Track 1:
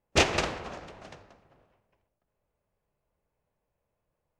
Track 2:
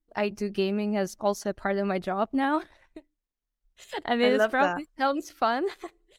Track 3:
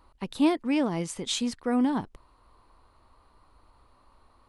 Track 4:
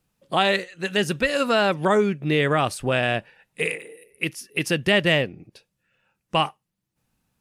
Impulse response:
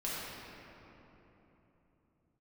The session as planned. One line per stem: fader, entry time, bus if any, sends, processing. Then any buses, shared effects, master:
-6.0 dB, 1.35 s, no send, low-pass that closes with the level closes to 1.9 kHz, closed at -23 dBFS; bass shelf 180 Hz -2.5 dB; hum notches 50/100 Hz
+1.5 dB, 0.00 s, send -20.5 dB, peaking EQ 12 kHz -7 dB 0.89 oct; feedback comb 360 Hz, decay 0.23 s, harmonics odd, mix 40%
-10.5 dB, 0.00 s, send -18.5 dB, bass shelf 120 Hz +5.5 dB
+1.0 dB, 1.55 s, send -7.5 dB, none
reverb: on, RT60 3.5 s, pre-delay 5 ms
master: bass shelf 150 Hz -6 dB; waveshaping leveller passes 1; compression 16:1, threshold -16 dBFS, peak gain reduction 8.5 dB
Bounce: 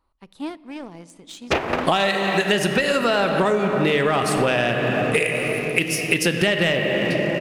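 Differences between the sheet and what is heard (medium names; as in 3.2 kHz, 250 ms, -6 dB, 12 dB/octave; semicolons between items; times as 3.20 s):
stem 1 -6.0 dB -> +5.0 dB; stem 2: muted; stem 4 +1.0 dB -> +8.0 dB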